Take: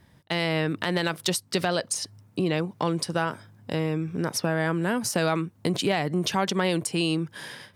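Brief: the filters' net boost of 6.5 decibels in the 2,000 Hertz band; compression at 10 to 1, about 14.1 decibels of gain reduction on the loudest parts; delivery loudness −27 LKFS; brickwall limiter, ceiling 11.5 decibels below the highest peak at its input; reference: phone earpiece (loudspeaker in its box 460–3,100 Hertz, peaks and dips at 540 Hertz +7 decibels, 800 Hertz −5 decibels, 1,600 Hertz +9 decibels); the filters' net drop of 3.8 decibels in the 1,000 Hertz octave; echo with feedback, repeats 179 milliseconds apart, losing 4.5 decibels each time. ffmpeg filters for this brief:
ffmpeg -i in.wav -af "equalizer=frequency=1000:width_type=o:gain=-5.5,equalizer=frequency=2000:width_type=o:gain=3.5,acompressor=threshold=-36dB:ratio=10,alimiter=level_in=6dB:limit=-24dB:level=0:latency=1,volume=-6dB,highpass=460,equalizer=frequency=540:width_type=q:width=4:gain=7,equalizer=frequency=800:width_type=q:width=4:gain=-5,equalizer=frequency=1600:width_type=q:width=4:gain=9,lowpass=frequency=3100:width=0.5412,lowpass=frequency=3100:width=1.3066,aecho=1:1:179|358|537|716|895|1074|1253|1432|1611:0.596|0.357|0.214|0.129|0.0772|0.0463|0.0278|0.0167|0.01,volume=15dB" out.wav

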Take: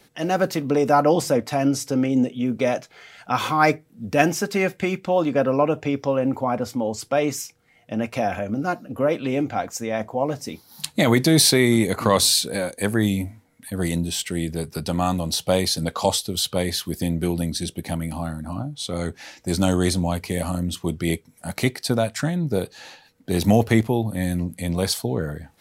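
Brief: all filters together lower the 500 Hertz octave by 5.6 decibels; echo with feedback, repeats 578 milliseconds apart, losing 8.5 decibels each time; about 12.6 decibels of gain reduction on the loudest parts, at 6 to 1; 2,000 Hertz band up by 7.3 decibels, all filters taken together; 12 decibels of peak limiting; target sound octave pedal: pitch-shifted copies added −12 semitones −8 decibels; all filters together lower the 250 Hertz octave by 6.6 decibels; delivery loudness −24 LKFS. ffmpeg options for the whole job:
ffmpeg -i in.wav -filter_complex "[0:a]equalizer=frequency=250:width_type=o:gain=-7.5,equalizer=frequency=500:width_type=o:gain=-5.5,equalizer=frequency=2000:width_type=o:gain=9,acompressor=threshold=-25dB:ratio=6,alimiter=limit=-21.5dB:level=0:latency=1,aecho=1:1:578|1156|1734|2312:0.376|0.143|0.0543|0.0206,asplit=2[link_01][link_02];[link_02]asetrate=22050,aresample=44100,atempo=2,volume=-8dB[link_03];[link_01][link_03]amix=inputs=2:normalize=0,volume=7.5dB" out.wav

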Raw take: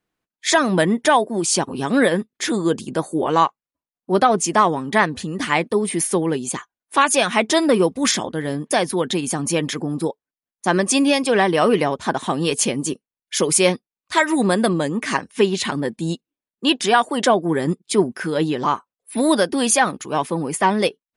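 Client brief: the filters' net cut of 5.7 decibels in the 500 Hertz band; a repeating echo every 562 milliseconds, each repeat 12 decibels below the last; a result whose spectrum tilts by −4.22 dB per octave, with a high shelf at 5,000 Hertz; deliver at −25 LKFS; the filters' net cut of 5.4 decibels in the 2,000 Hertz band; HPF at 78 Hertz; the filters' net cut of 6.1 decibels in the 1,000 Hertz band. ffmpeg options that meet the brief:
ffmpeg -i in.wav -af "highpass=78,equalizer=frequency=500:width_type=o:gain=-6,equalizer=frequency=1000:width_type=o:gain=-4.5,equalizer=frequency=2000:width_type=o:gain=-4,highshelf=frequency=5000:gain=-6.5,aecho=1:1:562|1124|1686:0.251|0.0628|0.0157,volume=-1.5dB" out.wav

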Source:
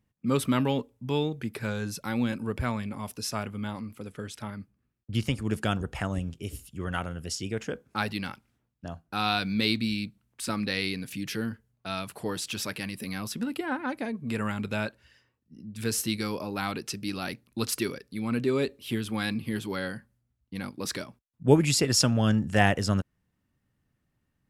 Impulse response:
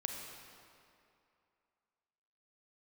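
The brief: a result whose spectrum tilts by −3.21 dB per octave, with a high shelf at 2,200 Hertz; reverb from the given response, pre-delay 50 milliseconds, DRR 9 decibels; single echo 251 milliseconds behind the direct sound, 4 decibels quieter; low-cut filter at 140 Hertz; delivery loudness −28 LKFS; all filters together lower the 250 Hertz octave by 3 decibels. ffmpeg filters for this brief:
-filter_complex "[0:a]highpass=140,equalizer=frequency=250:width_type=o:gain=-3,highshelf=frequency=2200:gain=4,aecho=1:1:251:0.631,asplit=2[link_01][link_02];[1:a]atrim=start_sample=2205,adelay=50[link_03];[link_02][link_03]afir=irnorm=-1:irlink=0,volume=-10dB[link_04];[link_01][link_04]amix=inputs=2:normalize=0"

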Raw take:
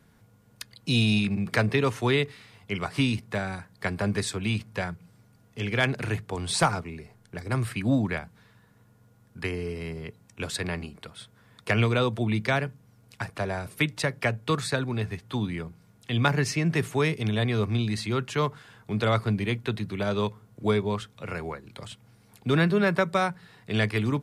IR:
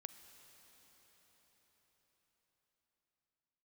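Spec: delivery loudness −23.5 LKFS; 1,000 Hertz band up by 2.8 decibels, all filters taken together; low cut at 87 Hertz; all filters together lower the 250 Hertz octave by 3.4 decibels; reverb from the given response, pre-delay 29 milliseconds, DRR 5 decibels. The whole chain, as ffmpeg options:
-filter_complex "[0:a]highpass=87,equalizer=frequency=250:width_type=o:gain=-4.5,equalizer=frequency=1000:width_type=o:gain=4,asplit=2[link_01][link_02];[1:a]atrim=start_sample=2205,adelay=29[link_03];[link_02][link_03]afir=irnorm=-1:irlink=0,volume=0.5dB[link_04];[link_01][link_04]amix=inputs=2:normalize=0,volume=3.5dB"

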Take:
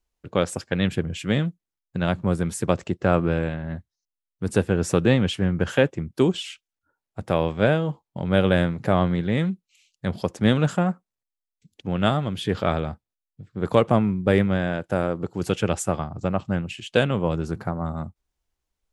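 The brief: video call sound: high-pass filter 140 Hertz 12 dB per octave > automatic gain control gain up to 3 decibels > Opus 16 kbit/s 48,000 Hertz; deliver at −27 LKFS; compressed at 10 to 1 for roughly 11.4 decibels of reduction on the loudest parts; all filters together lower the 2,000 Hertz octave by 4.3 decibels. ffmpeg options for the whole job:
ffmpeg -i in.wav -af "equalizer=frequency=2000:width_type=o:gain=-6,acompressor=threshold=-25dB:ratio=10,highpass=140,dynaudnorm=maxgain=3dB,volume=6dB" -ar 48000 -c:a libopus -b:a 16k out.opus

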